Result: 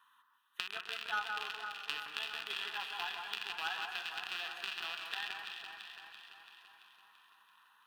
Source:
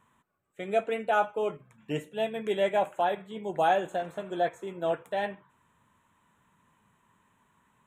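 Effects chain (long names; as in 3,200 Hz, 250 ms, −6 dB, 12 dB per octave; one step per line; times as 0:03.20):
loose part that buzzes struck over −42 dBFS, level −21 dBFS
high-pass filter 1,400 Hz 12 dB per octave
downward compressor 3 to 1, threshold −43 dBFS, peak gain reduction 12 dB
phaser with its sweep stopped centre 2,200 Hz, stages 6
harmonic generator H 2 −34 dB, 3 −18 dB, 7 −33 dB, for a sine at −27.5 dBFS
delay that swaps between a low-pass and a high-pass 168 ms, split 1,900 Hz, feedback 78%, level −4 dB
feedback echo with a swinging delay time 127 ms, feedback 76%, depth 94 cents, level −13.5 dB
level +13.5 dB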